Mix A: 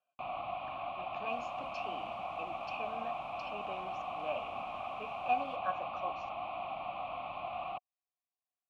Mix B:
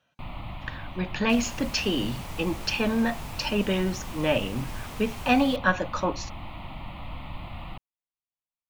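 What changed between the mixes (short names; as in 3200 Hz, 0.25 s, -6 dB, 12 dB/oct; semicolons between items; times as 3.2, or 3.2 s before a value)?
speech +4.0 dB; first sound -11.5 dB; master: remove vowel filter a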